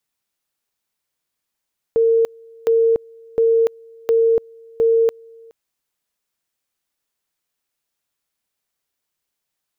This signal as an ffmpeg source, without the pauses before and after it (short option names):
-f lavfi -i "aevalsrc='pow(10,(-11.5-28.5*gte(mod(t,0.71),0.29))/20)*sin(2*PI*456*t)':d=3.55:s=44100"